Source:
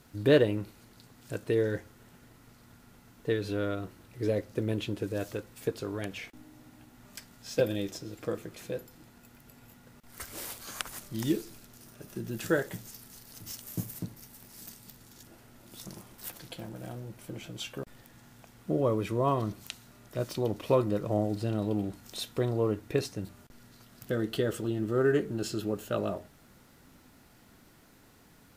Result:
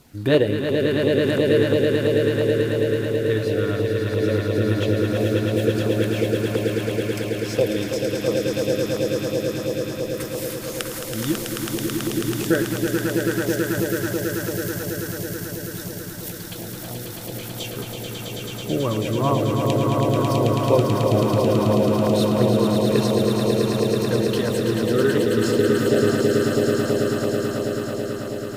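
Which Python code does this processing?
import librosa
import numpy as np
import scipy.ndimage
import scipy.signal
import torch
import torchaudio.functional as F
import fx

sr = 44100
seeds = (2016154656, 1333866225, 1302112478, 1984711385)

y = fx.echo_swell(x, sr, ms=109, loudest=8, wet_db=-5.0)
y = fx.filter_lfo_notch(y, sr, shape='saw_down', hz=2.9, low_hz=340.0, high_hz=1800.0, q=2.7)
y = y * 10.0 ** (5.5 / 20.0)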